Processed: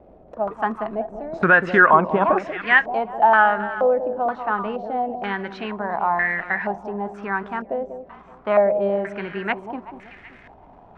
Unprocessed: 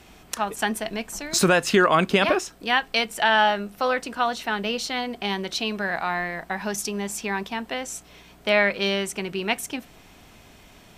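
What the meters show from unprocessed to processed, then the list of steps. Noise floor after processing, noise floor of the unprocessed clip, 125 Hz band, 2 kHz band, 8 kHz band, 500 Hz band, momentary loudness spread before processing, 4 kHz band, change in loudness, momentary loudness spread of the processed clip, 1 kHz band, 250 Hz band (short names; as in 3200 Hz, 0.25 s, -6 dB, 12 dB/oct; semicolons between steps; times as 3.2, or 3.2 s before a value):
-48 dBFS, -51 dBFS, -0.5 dB, +4.5 dB, under -30 dB, +3.5 dB, 12 LU, -14.0 dB, +3.0 dB, 14 LU, +5.5 dB, -0.5 dB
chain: wow and flutter 18 cents; crackle 160/s -32 dBFS; on a send: echo with dull and thin repeats by turns 0.189 s, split 810 Hz, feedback 56%, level -9 dB; on the sum: stepped low-pass 2.1 Hz 590–1900 Hz; gain -1.5 dB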